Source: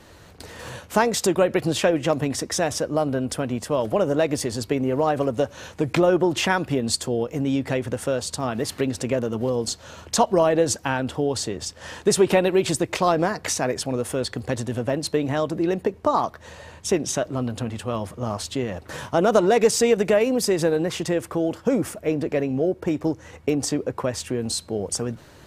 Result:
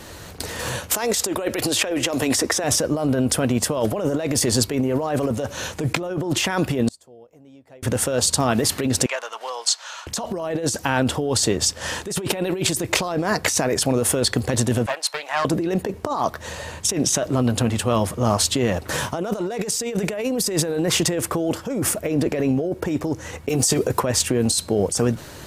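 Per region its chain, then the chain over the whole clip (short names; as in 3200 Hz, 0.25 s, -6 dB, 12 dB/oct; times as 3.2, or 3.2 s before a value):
0.91–2.64 bell 160 Hz -13.5 dB 0.73 oct + three-band squash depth 70%
6.88–7.83 bell 660 Hz +8.5 dB 1.3 oct + flipped gate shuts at -22 dBFS, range -35 dB
9.06–10.07 HPF 830 Hz 24 dB/oct + air absorption 60 m
14.86–15.45 HPF 800 Hz 24 dB/oct + high shelf 3700 Hz -9 dB + Doppler distortion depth 0.18 ms
23.49–24 high shelf 4200 Hz +11 dB + negative-ratio compressor -23 dBFS, ratio -0.5 + notch comb 280 Hz
whole clip: high shelf 5700 Hz +8 dB; negative-ratio compressor -26 dBFS, ratio -1; gain +4.5 dB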